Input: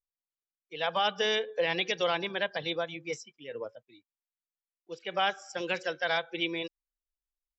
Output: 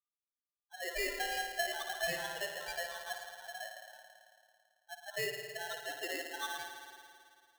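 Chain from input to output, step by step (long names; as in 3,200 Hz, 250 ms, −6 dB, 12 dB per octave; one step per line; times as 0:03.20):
spectral peaks only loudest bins 4
spring reverb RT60 2.3 s, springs 55 ms, chirp 30 ms, DRR 3.5 dB
ring modulator with a square carrier 1,200 Hz
level −6 dB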